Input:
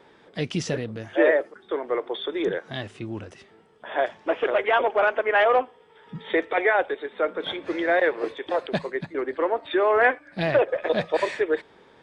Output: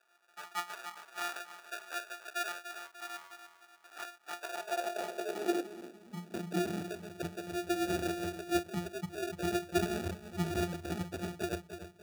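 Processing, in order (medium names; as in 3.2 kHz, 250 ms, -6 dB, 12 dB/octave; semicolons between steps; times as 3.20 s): integer overflow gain 15.5 dB; pitch-class resonator F, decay 0.18 s; on a send: bucket-brigade echo 294 ms, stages 1024, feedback 42%, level -9 dB; on the sum: sample-and-hold 42×; high-pass sweep 1.1 kHz -> 76 Hz, 4.22–7.61 s; trim +1.5 dB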